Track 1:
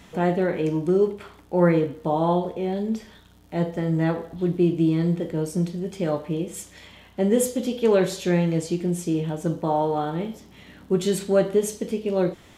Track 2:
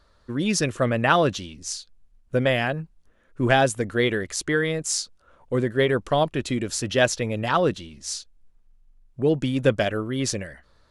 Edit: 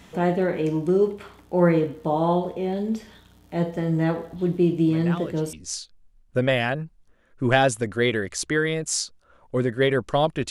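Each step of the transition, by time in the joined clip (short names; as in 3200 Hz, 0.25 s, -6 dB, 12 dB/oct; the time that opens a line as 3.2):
track 1
4.9 add track 2 from 0.88 s 0.63 s -16 dB
5.53 switch to track 2 from 1.51 s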